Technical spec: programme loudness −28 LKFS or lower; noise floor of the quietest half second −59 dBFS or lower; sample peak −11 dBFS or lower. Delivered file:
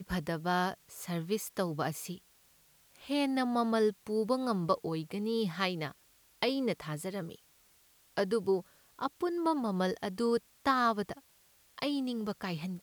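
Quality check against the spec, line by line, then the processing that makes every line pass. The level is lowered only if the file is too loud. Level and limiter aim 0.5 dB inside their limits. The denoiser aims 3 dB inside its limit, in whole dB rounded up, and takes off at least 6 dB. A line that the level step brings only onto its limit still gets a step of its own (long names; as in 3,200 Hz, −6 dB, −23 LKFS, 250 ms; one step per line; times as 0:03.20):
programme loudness −33.5 LKFS: in spec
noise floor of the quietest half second −65 dBFS: in spec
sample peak −14.0 dBFS: in spec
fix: no processing needed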